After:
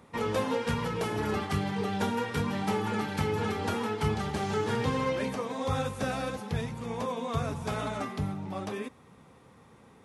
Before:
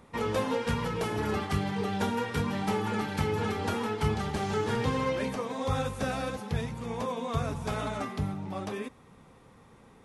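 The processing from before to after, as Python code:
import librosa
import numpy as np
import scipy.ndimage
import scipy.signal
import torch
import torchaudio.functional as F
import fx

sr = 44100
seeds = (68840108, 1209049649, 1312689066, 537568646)

y = scipy.signal.sosfilt(scipy.signal.butter(2, 67.0, 'highpass', fs=sr, output='sos'), x)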